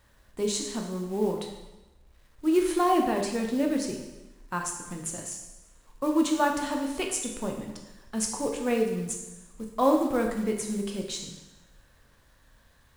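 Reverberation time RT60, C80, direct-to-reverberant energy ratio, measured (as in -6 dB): 1.1 s, 7.5 dB, 2.0 dB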